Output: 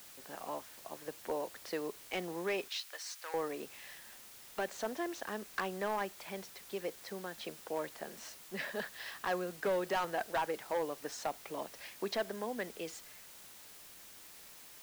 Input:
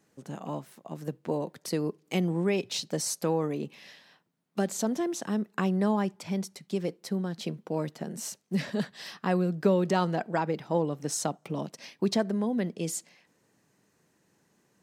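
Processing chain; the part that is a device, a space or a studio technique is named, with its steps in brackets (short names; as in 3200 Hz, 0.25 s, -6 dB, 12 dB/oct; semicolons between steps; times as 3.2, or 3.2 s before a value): drive-through speaker (BPF 520–3500 Hz; bell 1700 Hz +5 dB 0.29 oct; hard clip -26 dBFS, distortion -13 dB; white noise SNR 14 dB); 2.68–3.34 HPF 1300 Hz 12 dB/oct; gain -2 dB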